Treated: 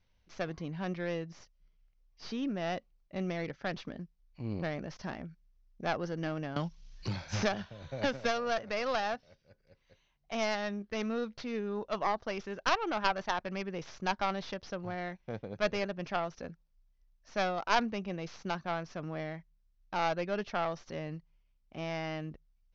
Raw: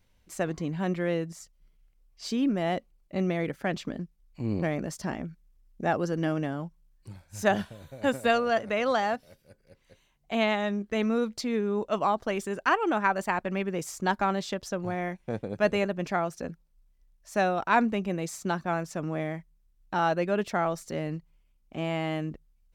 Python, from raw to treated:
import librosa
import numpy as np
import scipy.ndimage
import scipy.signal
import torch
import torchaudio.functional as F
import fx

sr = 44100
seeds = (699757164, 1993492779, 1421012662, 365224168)

y = fx.tracing_dist(x, sr, depth_ms=0.33)
y = scipy.signal.sosfilt(scipy.signal.butter(12, 6200.0, 'lowpass', fs=sr, output='sos'), y)
y = fx.peak_eq(y, sr, hz=290.0, db=-4.0, octaves=1.4)
y = fx.band_squash(y, sr, depth_pct=100, at=(6.56, 8.58))
y = F.gain(torch.from_numpy(y), -5.0).numpy()